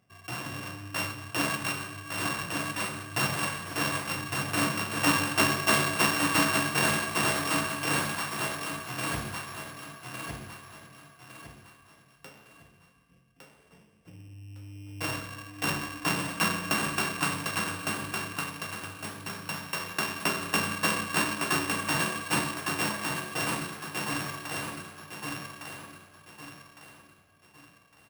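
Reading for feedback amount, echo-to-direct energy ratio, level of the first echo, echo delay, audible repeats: 35%, −3.5 dB, −4.0 dB, 1,158 ms, 4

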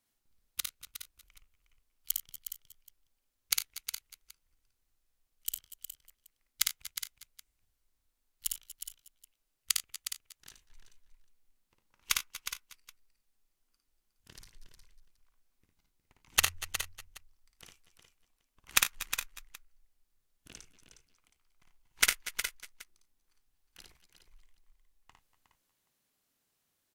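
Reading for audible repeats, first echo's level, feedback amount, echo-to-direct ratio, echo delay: 8, −3.5 dB, repeats not evenly spaced, −1.5 dB, 55 ms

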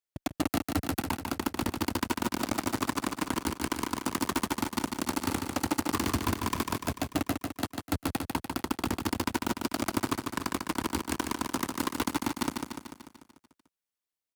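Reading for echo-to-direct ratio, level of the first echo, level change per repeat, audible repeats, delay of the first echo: −3.0 dB, −5.0 dB, −4.5 dB, 7, 147 ms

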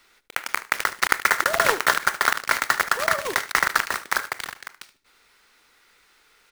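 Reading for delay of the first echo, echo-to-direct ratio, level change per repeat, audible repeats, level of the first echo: 75 ms, −17.0 dB, −16.0 dB, 2, −17.0 dB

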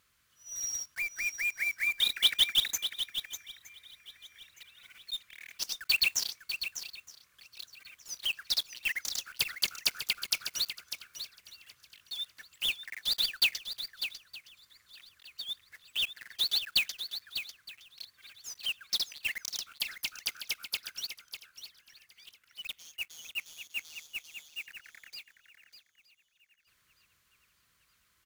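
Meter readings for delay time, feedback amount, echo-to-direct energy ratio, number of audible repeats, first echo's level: 598 ms, repeats not evenly spaced, −9.0 dB, 5, −9.5 dB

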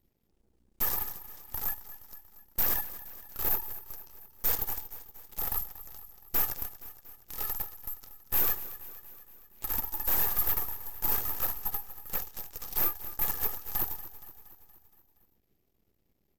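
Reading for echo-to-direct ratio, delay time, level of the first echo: −13.0 dB, 235 ms, −15.0 dB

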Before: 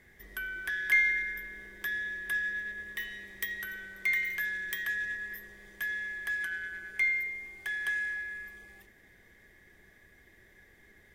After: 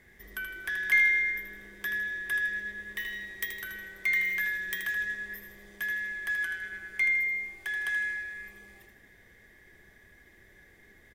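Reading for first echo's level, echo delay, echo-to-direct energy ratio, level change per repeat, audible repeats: −7.0 dB, 79 ms, −6.0 dB, −7.5 dB, 3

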